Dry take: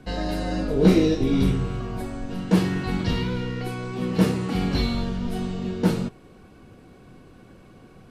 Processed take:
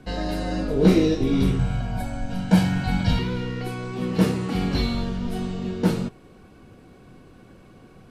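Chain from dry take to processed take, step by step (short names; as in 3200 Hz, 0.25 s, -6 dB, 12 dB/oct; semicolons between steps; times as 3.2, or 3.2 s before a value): 1.59–3.19 comb 1.3 ms, depth 85%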